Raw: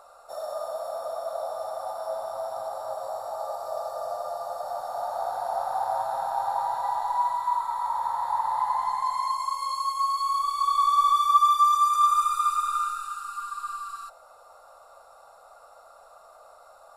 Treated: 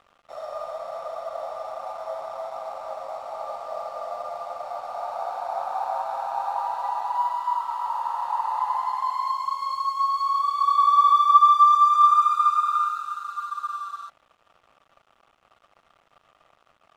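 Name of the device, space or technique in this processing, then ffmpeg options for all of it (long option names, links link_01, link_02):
pocket radio on a weak battery: -af "highpass=310,lowpass=4400,aeval=exprs='sgn(val(0))*max(abs(val(0))-0.00335,0)':channel_layout=same,equalizer=frequency=1200:width_type=o:width=0.3:gain=5"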